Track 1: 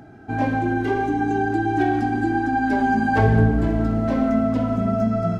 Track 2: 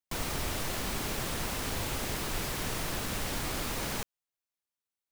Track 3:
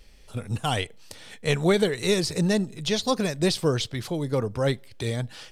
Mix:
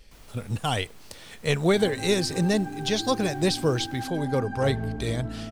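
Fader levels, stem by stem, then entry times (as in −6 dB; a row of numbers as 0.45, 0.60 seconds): −14.5, −19.5, −0.5 decibels; 1.45, 0.00, 0.00 seconds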